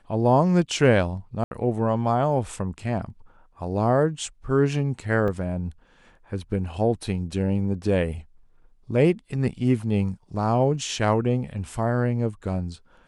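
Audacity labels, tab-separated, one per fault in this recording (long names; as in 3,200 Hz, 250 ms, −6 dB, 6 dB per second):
1.440000	1.510000	drop-out 71 ms
5.280000	5.280000	drop-out 2.9 ms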